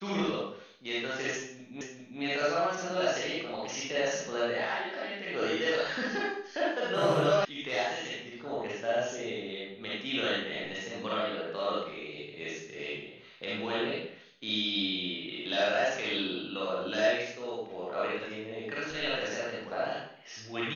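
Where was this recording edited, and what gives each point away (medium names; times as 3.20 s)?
1.81 s: repeat of the last 0.4 s
7.45 s: sound stops dead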